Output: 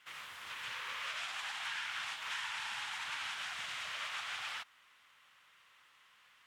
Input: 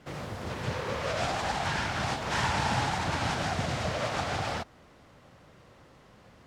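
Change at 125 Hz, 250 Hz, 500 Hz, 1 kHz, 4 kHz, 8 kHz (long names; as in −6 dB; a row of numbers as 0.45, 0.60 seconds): −36.0 dB, below −30 dB, −27.0 dB, −14.0 dB, −4.0 dB, −8.5 dB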